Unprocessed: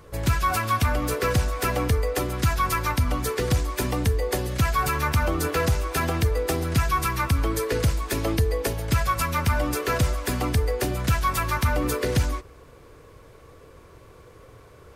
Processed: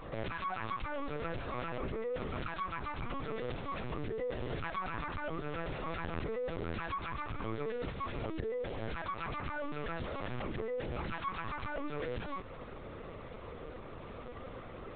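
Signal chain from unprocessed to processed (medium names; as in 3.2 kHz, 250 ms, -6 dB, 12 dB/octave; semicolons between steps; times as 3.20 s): high-pass 130 Hz 12 dB/octave; compression 20:1, threshold -35 dBFS, peak gain reduction 16.5 dB; peak limiter -33.5 dBFS, peak gain reduction 10.5 dB; LPC vocoder at 8 kHz pitch kept; trim +4.5 dB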